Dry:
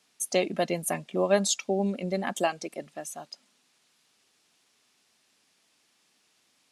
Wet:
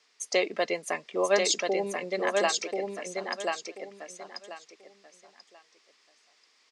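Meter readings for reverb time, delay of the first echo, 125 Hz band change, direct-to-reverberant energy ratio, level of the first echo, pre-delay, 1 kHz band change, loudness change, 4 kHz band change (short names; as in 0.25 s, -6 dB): none, 1.036 s, under -10 dB, none, -3.5 dB, none, +1.0 dB, 0.0 dB, +3.5 dB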